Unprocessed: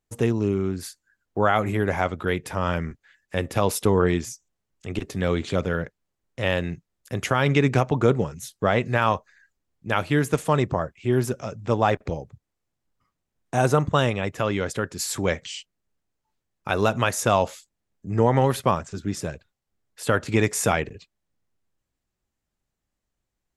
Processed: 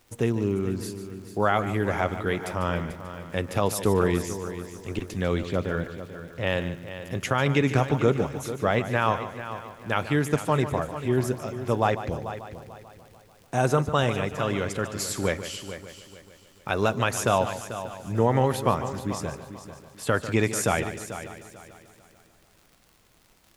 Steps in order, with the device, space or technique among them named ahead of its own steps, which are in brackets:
0:05.42–0:06.47: high-shelf EQ 5,100 Hz −11 dB
vinyl LP (surface crackle 88 per second −40 dBFS; pink noise bed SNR 35 dB)
echo machine with several playback heads 147 ms, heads first and third, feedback 46%, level −12.5 dB
level −2.5 dB

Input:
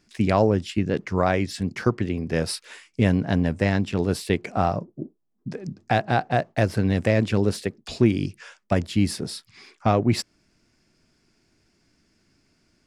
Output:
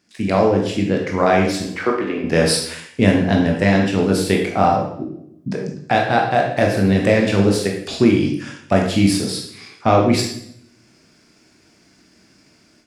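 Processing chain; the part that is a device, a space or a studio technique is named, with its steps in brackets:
0:01.62–0:02.24: three-way crossover with the lows and the highs turned down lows −21 dB, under 270 Hz, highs −15 dB, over 3,600 Hz
far laptop microphone (convolution reverb RT60 0.65 s, pre-delay 16 ms, DRR 0 dB; high-pass filter 180 Hz 6 dB per octave; automatic gain control gain up to 10 dB)

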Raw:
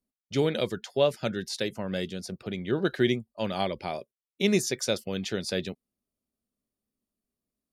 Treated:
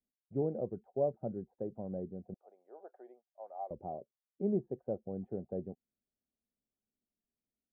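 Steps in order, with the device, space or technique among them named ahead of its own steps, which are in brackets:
under water (low-pass filter 640 Hz 24 dB per octave; parametric band 760 Hz +9.5 dB 0.29 octaves)
0:02.34–0:03.71: high-pass filter 690 Hz 24 dB per octave
level −8 dB

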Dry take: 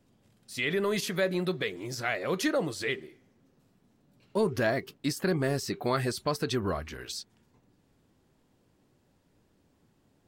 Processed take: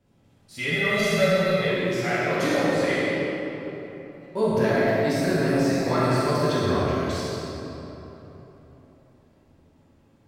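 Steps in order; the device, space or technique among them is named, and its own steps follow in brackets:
swimming-pool hall (convolution reverb RT60 3.6 s, pre-delay 41 ms, DRR −3 dB; high-shelf EQ 4,000 Hz −6.5 dB)
0:00.71–0:01.68: comb filter 1.5 ms, depth 75%
coupled-rooms reverb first 0.93 s, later 2.8 s, from −25 dB, DRR −4.5 dB
level −2 dB

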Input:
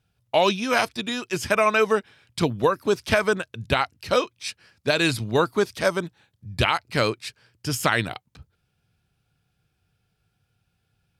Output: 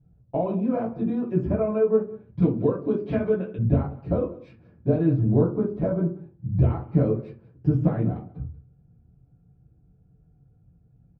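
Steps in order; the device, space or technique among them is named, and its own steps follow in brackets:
television next door (downward compressor 3 to 1, threshold −30 dBFS, peak gain reduction 11.5 dB; low-pass filter 330 Hz 12 dB per octave; convolution reverb RT60 0.35 s, pre-delay 5 ms, DRR −9 dB)
0:02.42–0:03.59: meter weighting curve D
single-tap delay 185 ms −20.5 dB
level +5 dB

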